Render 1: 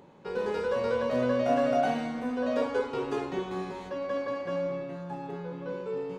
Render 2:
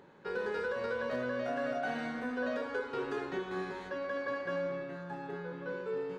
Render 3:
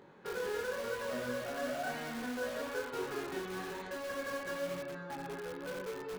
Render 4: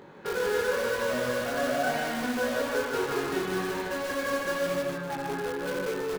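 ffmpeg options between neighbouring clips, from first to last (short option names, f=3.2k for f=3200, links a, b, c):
-af "equalizer=f=400:t=o:w=0.67:g=4,equalizer=f=1.6k:t=o:w=0.67:g=12,equalizer=f=4k:t=o:w=0.67:g=4,alimiter=limit=-20dB:level=0:latency=1:release=208,volume=-6dB"
-filter_complex "[0:a]flanger=delay=19:depth=7.4:speed=1,asplit=2[a][b];[b]aeval=exprs='(mod(89.1*val(0)+1,2)-1)/89.1':c=same,volume=-6dB[c];[a][c]amix=inputs=2:normalize=0"
-af "aecho=1:1:151|302|453|604:0.531|0.175|0.0578|0.0191,volume=8.5dB"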